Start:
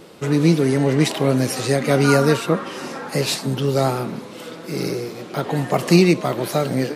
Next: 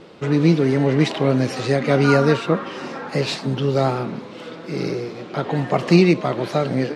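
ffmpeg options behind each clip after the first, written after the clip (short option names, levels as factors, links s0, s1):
-af "lowpass=4300"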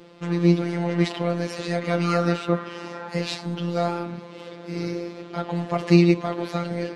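-af "afftfilt=real='hypot(re,im)*cos(PI*b)':imag='0':win_size=1024:overlap=0.75,volume=0.841"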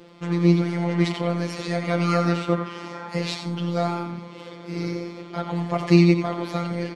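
-af "aecho=1:1:88:0.376"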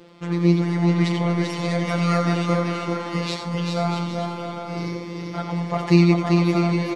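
-af "aecho=1:1:390|643.5|808.3|915.4|985:0.631|0.398|0.251|0.158|0.1"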